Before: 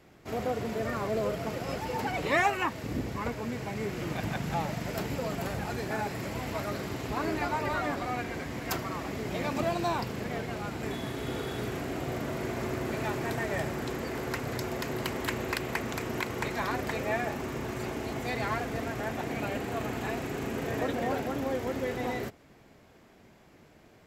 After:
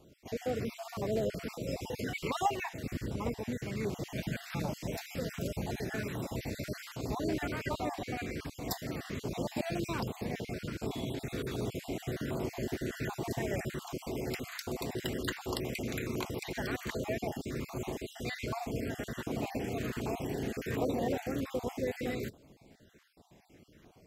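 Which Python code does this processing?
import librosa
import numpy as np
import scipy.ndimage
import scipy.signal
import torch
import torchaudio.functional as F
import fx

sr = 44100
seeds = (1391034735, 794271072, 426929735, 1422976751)

y = fx.spec_dropout(x, sr, seeds[0], share_pct=34)
y = fx.filter_lfo_notch(y, sr, shape='saw_down', hz=1.3, low_hz=710.0, high_hz=2000.0, q=0.84)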